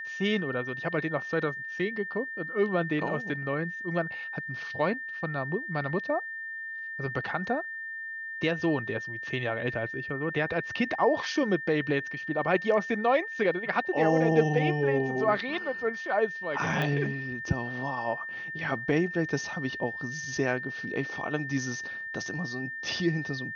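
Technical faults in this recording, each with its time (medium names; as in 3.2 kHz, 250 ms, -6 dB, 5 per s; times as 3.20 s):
whine 1.8 kHz -35 dBFS
16.82 s: pop -18 dBFS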